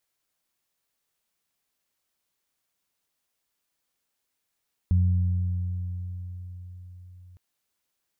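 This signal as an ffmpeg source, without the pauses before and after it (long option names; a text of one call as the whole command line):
ffmpeg -f lavfi -i "aevalsrc='0.141*pow(10,-3*t/4.91)*sin(2*PI*90.3*t)+0.0398*pow(10,-3*t/3.35)*sin(2*PI*180*t)':duration=2.46:sample_rate=44100" out.wav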